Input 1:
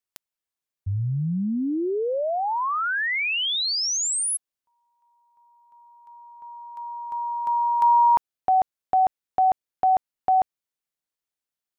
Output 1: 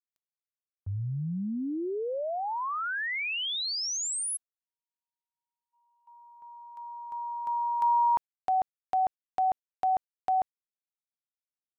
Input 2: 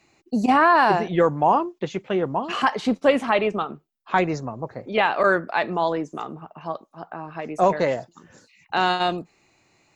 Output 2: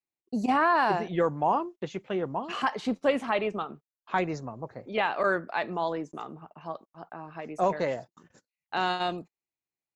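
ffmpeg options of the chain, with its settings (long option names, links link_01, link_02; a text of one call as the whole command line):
ffmpeg -i in.wav -af "agate=range=-31dB:threshold=-52dB:ratio=16:release=82:detection=peak,volume=-7dB" out.wav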